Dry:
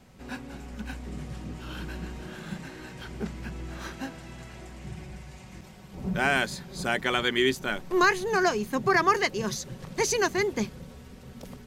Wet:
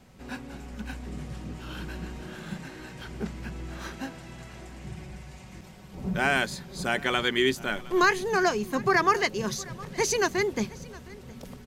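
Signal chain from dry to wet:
single-tap delay 714 ms −21.5 dB

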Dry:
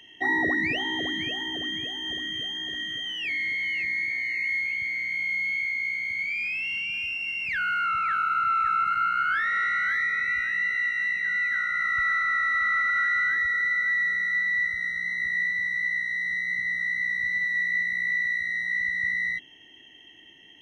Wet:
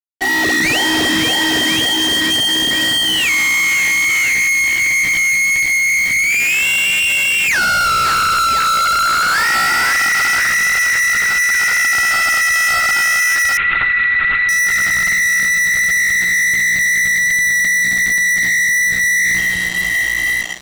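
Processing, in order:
automatic gain control gain up to 10.5 dB
delay that swaps between a low-pass and a high-pass 517 ms, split 1,500 Hz, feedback 58%, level −3.5 dB
fuzz pedal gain 29 dB, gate −33 dBFS
0:13.57–0:14.49: linear-prediction vocoder at 8 kHz whisper

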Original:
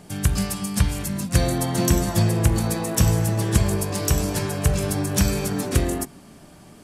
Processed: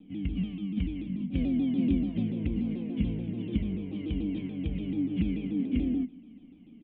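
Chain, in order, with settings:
formant resonators in series i
comb filter 4.1 ms, depth 59%
pitch modulation by a square or saw wave saw down 6.9 Hz, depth 160 cents

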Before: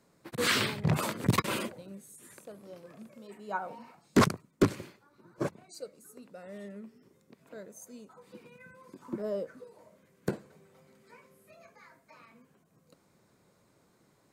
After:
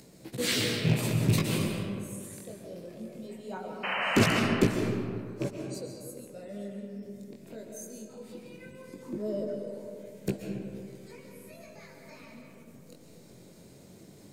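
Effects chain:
loose part that buzzes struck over −29 dBFS, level −24 dBFS
parametric band 1,200 Hz −14.5 dB 1.4 octaves
in parallel at −2 dB: upward compression, threshold −35 dBFS
on the sum: chorus effect 0.19 Hz, delay 15.5 ms, depth 7.4 ms
sound drawn into the spectrogram noise, 0:03.83–0:04.40, 470–3,100 Hz −31 dBFS
on a send at −2 dB: convolution reverb RT60 2.2 s, pre-delay 95 ms

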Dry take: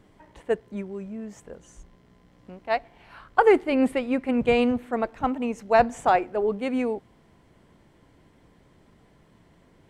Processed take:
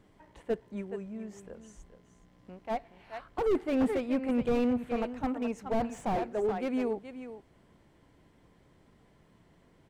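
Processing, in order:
single-tap delay 423 ms −12.5 dB
slew-rate limiting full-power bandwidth 48 Hz
level −5 dB

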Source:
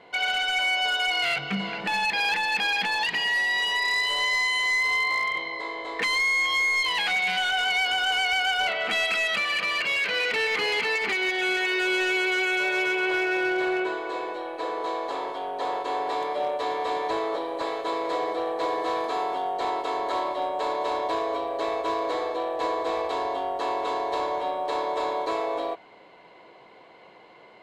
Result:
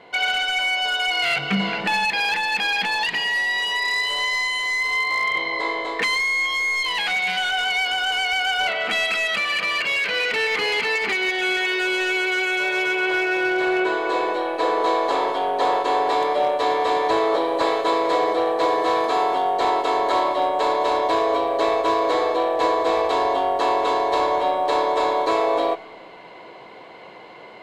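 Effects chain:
speech leveller within 5 dB 0.5 s
on a send: convolution reverb RT60 1.6 s, pre-delay 30 ms, DRR 19 dB
on the sum: level +4.5 dB

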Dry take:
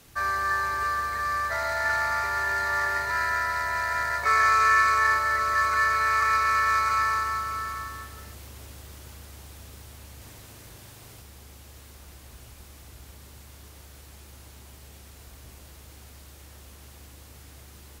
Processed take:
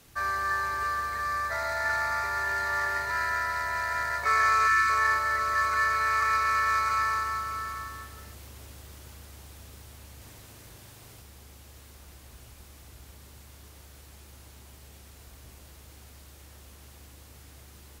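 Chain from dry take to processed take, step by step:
0:01.25–0:02.46: notch filter 3,000 Hz, Q 10
0:04.67–0:04.89: gain on a spectral selection 430–1,100 Hz −19 dB
level −2.5 dB

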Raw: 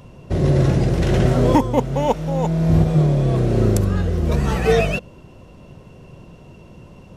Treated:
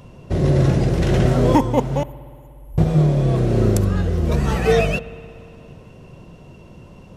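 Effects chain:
0:02.03–0:02.78: inverse Chebyshev band-stop filter 210–2,900 Hz, stop band 80 dB
spring reverb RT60 2.6 s, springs 59 ms, chirp 55 ms, DRR 17.5 dB

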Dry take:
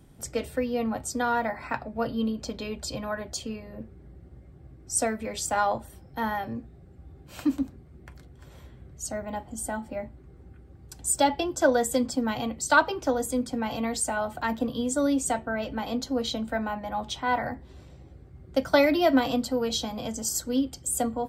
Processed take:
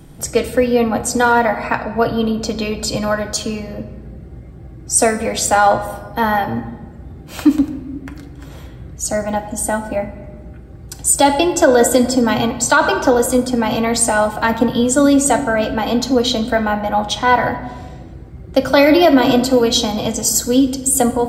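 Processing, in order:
rectangular room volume 1,200 cubic metres, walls mixed, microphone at 0.63 metres
boost into a limiter +14 dB
level −1 dB

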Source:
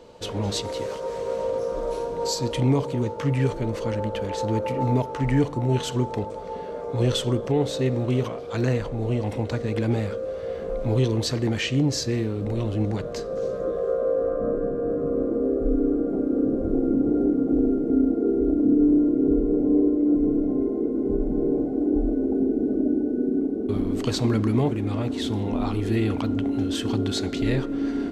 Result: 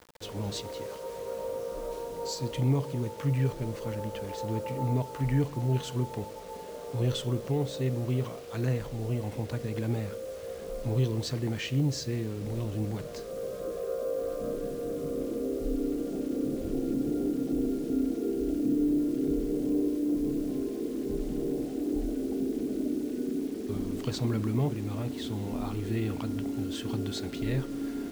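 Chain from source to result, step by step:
dynamic equaliser 140 Hz, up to +6 dB, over −38 dBFS, Q 2.6
bit reduction 7 bits
level −8.5 dB

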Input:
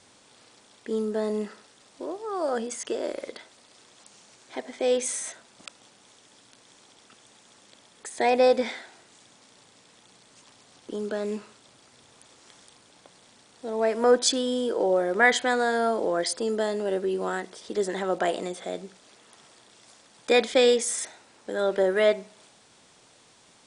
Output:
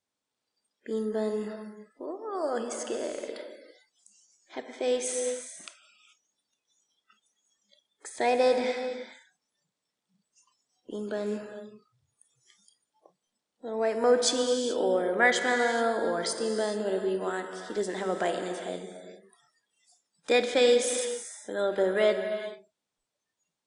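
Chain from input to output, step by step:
reverb whose tail is shaped and stops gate 460 ms flat, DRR 5.5 dB
noise reduction from a noise print of the clip's start 27 dB
level −3.5 dB

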